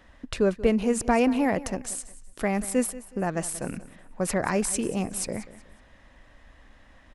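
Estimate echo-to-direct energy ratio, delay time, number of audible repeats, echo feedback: −16.5 dB, 184 ms, 2, 30%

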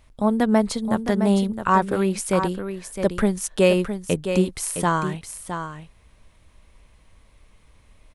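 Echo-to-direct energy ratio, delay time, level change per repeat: −8.5 dB, 663 ms, repeats not evenly spaced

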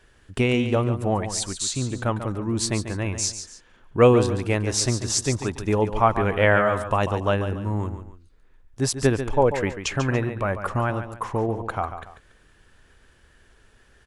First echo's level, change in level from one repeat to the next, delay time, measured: −10.0 dB, −9.5 dB, 142 ms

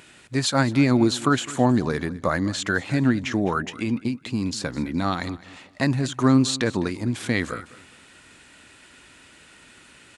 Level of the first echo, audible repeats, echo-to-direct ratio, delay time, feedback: −19.0 dB, 2, −18.5 dB, 208 ms, 30%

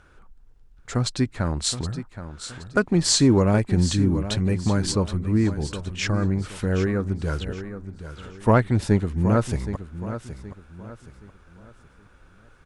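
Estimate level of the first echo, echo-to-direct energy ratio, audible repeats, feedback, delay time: −11.5 dB, −11.0 dB, 3, 35%, 771 ms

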